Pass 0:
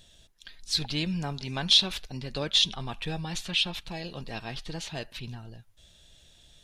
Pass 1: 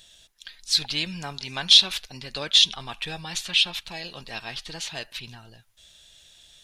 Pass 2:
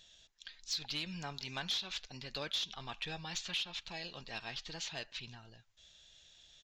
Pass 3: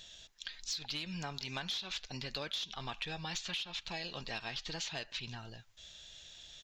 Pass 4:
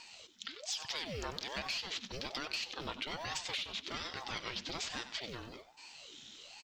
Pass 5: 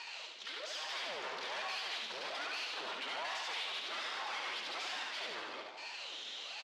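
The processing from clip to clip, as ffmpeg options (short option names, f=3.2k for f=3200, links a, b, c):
-af "tiltshelf=f=690:g=-6.5"
-af "aresample=16000,volume=15dB,asoftclip=hard,volume=-15dB,aresample=44100,acompressor=threshold=-25dB:ratio=12,asoftclip=type=tanh:threshold=-17.5dB,volume=-8dB"
-af "acompressor=threshold=-46dB:ratio=4,volume=8dB"
-filter_complex "[0:a]acrossover=split=160|2400[a][b][c];[a]acrusher=samples=27:mix=1:aa=0.000001[d];[d][b][c]amix=inputs=3:normalize=0,aecho=1:1:94|188|282|376:0.224|0.0851|0.0323|0.0123,aeval=exprs='val(0)*sin(2*PI*570*n/s+570*0.65/1.2*sin(2*PI*1.2*n/s))':c=same,volume=3dB"
-filter_complex "[0:a]aeval=exprs='(tanh(316*val(0)+0.55)-tanh(0.55))/316':c=same,highpass=630,lowpass=3.9k,asplit=2[a][b];[b]aecho=0:1:70|147|231.7|324.9|427.4:0.631|0.398|0.251|0.158|0.1[c];[a][c]amix=inputs=2:normalize=0,volume=12.5dB"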